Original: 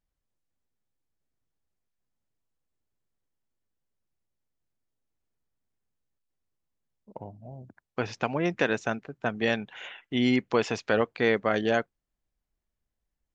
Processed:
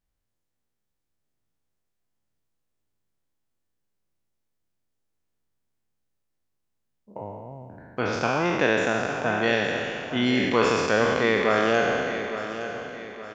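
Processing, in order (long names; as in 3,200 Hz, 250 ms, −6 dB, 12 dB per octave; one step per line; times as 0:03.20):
peak hold with a decay on every bin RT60 2.24 s
on a send: repeating echo 865 ms, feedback 42%, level −11 dB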